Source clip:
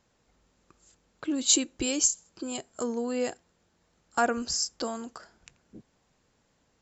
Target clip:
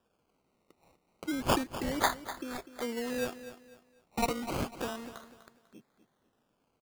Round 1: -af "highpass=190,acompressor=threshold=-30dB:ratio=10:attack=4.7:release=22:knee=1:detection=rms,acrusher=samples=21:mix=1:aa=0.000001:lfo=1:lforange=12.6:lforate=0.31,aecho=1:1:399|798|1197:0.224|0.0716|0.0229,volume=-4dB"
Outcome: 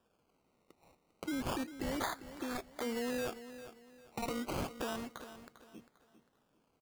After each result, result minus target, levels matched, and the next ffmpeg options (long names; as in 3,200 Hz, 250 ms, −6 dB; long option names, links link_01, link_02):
downward compressor: peak gain reduction +13.5 dB; echo 151 ms late
-af "highpass=190,acrusher=samples=21:mix=1:aa=0.000001:lfo=1:lforange=12.6:lforate=0.31,aecho=1:1:399|798|1197:0.224|0.0716|0.0229,volume=-4dB"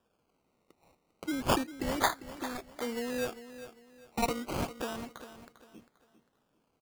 echo 151 ms late
-af "highpass=190,acrusher=samples=21:mix=1:aa=0.000001:lfo=1:lforange=12.6:lforate=0.31,aecho=1:1:248|496|744:0.224|0.0716|0.0229,volume=-4dB"